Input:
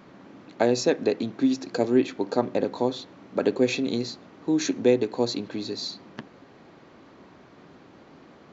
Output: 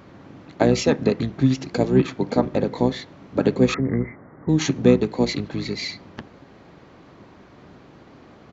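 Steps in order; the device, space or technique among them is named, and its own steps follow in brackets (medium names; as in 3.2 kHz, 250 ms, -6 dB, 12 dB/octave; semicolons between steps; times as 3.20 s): octave pedal (harmony voices -12 st -3 dB); 3.74–4.49 s: steep low-pass 2.1 kHz 96 dB/octave; trim +2 dB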